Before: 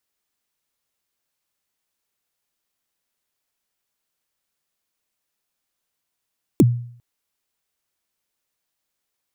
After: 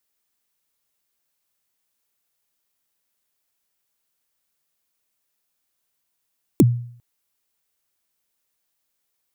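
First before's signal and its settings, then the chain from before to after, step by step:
kick drum length 0.40 s, from 390 Hz, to 120 Hz, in 36 ms, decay 0.57 s, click on, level -6.5 dB
treble shelf 9.1 kHz +6.5 dB

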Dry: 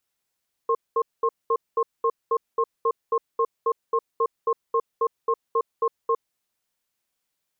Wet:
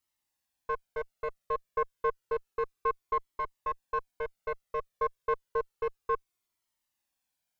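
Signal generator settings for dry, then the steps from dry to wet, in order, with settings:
cadence 459 Hz, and 1.07 kHz, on 0.06 s, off 0.21 s, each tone -21 dBFS 5.57 s
single-diode clipper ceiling -21.5 dBFS; Shepard-style flanger falling 0.3 Hz

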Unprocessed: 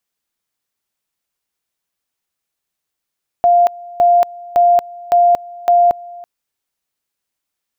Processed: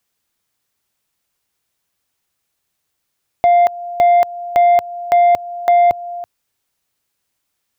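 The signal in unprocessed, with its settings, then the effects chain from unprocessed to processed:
two-level tone 699 Hz -7 dBFS, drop 22.5 dB, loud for 0.23 s, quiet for 0.33 s, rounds 5
peaking EQ 100 Hz +5.5 dB 0.94 oct; in parallel at +1 dB: compression, threshold -21 dBFS; on the sum: saturation -6.5 dBFS

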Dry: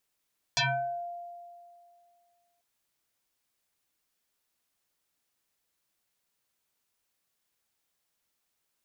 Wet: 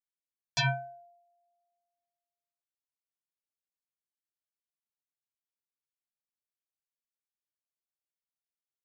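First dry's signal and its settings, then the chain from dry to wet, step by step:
FM tone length 2.04 s, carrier 696 Hz, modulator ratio 1.19, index 7.6, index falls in 0.49 s exponential, decay 2.32 s, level -22.5 dB
peaking EQ 140 Hz +6.5 dB 0.77 oct; upward expansion 2.5:1, over -43 dBFS

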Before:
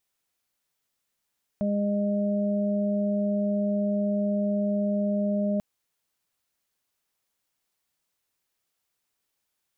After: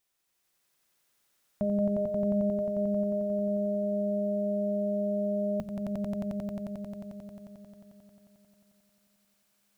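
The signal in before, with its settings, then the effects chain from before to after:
steady additive tone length 3.99 s, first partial 204 Hz, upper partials -16.5/-4 dB, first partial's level -24 dB
hum notches 50/100/150/200 Hz; echo with a slow build-up 89 ms, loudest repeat 5, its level -3 dB

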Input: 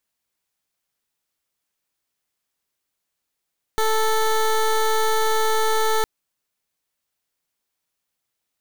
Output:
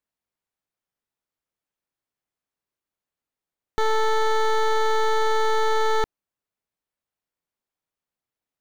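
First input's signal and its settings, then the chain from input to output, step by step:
pulse 439 Hz, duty 17% -19 dBFS 2.26 s
treble shelf 2.3 kHz -11 dB; waveshaping leveller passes 2

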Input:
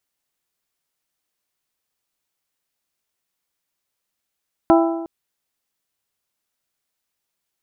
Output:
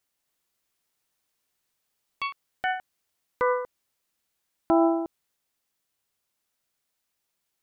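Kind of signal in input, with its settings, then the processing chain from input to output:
metal hit bell, length 0.36 s, lowest mode 332 Hz, modes 5, decay 1.10 s, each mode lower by 3 dB, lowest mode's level -10 dB
peak limiter -12.5 dBFS; ever faster or slower copies 273 ms, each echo +7 st, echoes 3

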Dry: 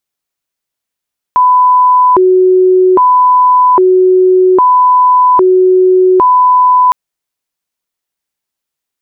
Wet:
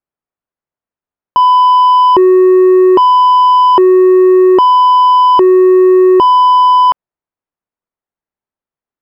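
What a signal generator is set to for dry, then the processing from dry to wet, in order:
siren hi-lo 370–1000 Hz 0.62 per s sine -3.5 dBFS 5.56 s
low-pass 1.3 kHz 12 dB/octave; waveshaping leveller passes 1

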